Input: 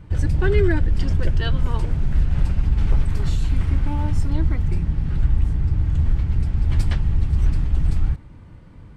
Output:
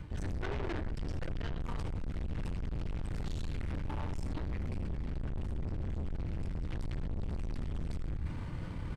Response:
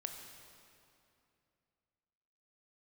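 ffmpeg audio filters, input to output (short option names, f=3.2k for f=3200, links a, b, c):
-filter_complex "[0:a]acrossover=split=310|1500[a][b][c];[c]alimiter=level_in=9dB:limit=-24dB:level=0:latency=1:release=114,volume=-9dB[d];[a][b][d]amix=inputs=3:normalize=0,asplit=2[e][f];[f]adelay=157.4,volume=-27dB,highshelf=f=4k:g=-3.54[g];[e][g]amix=inputs=2:normalize=0[h];[1:a]atrim=start_sample=2205,atrim=end_sample=6174[i];[h][i]afir=irnorm=-1:irlink=0,aeval=exprs='(tanh(39.8*val(0)+0.5)-tanh(0.5))/39.8':c=same,areverse,acompressor=threshold=-43dB:ratio=12,areverse,equalizer=f=3.5k:w=0.38:g=3.5,volume=10dB"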